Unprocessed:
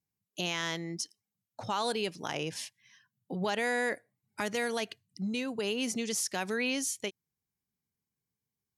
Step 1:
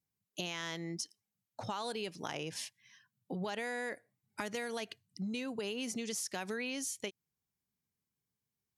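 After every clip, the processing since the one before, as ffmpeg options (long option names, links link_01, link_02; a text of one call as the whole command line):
ffmpeg -i in.wav -af "acompressor=threshold=-34dB:ratio=6,volume=-1dB" out.wav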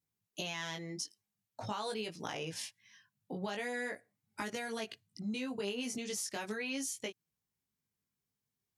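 ffmpeg -i in.wav -af "flanger=delay=18:depth=2.2:speed=0.42,volume=3dB" out.wav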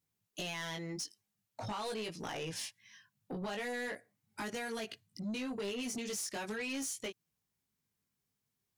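ffmpeg -i in.wav -af "asoftclip=type=tanh:threshold=-37dB,volume=3dB" out.wav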